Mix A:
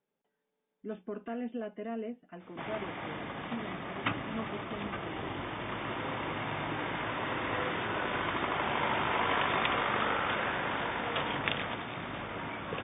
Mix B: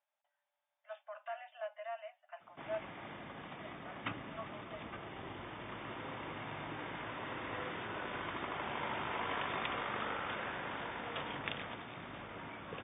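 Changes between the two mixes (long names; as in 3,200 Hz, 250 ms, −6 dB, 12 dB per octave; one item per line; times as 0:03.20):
speech: add linear-phase brick-wall high-pass 550 Hz
background −8.5 dB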